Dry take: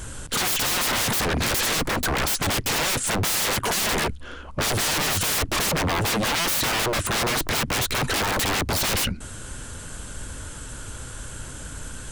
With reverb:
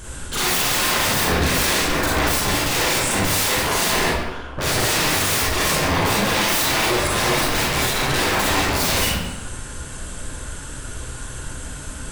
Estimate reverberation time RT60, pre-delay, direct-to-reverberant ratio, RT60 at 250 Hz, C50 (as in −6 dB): 1.1 s, 32 ms, −6.5 dB, 0.95 s, −2.0 dB